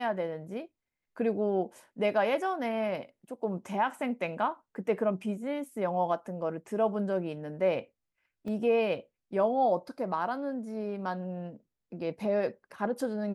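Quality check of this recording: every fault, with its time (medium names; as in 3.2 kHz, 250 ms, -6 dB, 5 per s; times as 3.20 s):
8.48 s: dropout 2.2 ms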